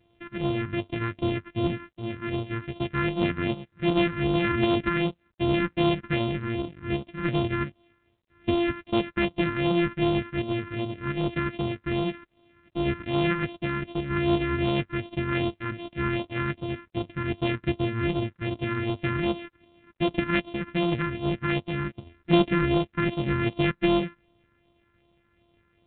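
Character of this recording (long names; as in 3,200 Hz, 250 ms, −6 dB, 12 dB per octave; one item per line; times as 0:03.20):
a buzz of ramps at a fixed pitch in blocks of 128 samples
phaser sweep stages 4, 2.6 Hz, lowest notch 650–1,700 Hz
G.726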